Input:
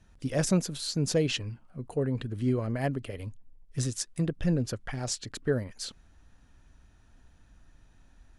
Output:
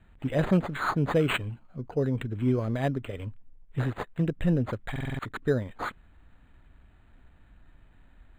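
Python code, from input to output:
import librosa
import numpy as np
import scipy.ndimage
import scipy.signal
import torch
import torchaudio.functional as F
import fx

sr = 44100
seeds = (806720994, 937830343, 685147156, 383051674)

y = fx.lowpass_res(x, sr, hz=4100.0, q=2.6)
y = fx.buffer_glitch(y, sr, at_s=(4.91,), block=2048, repeats=5)
y = np.interp(np.arange(len(y)), np.arange(len(y))[::8], y[::8])
y = y * librosa.db_to_amplitude(2.0)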